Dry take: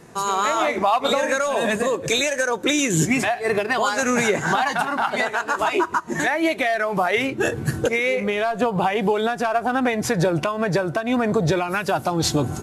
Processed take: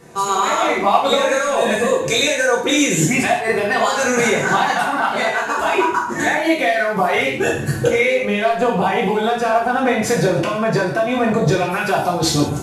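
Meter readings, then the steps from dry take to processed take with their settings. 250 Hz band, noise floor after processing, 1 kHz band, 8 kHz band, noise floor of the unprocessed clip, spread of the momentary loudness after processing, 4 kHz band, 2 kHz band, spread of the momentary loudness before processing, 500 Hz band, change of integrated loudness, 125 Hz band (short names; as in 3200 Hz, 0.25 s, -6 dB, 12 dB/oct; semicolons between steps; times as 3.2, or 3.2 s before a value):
+3.0 dB, -24 dBFS, +4.5 dB, +4.0 dB, -35 dBFS, 3 LU, +4.5 dB, +4.0 dB, 3 LU, +4.5 dB, +4.0 dB, +3.5 dB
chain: non-linear reverb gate 0.21 s falling, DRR -3.5 dB; gain -1 dB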